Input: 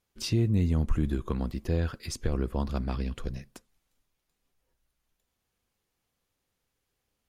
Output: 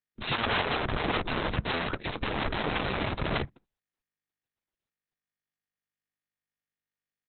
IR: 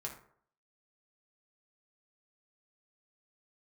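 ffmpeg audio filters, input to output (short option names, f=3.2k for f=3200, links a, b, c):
-filter_complex "[0:a]agate=range=-42dB:threshold=-44dB:ratio=16:detection=peak,acontrast=69,equalizer=f=4.3k:w=0.37:g=-9,acompressor=threshold=-23dB:ratio=4,aeval=exprs='(mod(39.8*val(0)+1,2)-1)/39.8':c=same,aresample=16000,aresample=44100,asplit=2[a][b];[1:a]atrim=start_sample=2205,atrim=end_sample=3528,lowpass=3.6k[c];[b][c]afir=irnorm=-1:irlink=0,volume=-17dB[d];[a][d]amix=inputs=2:normalize=0,volume=9dB" -ar 48000 -c:a libopus -b:a 6k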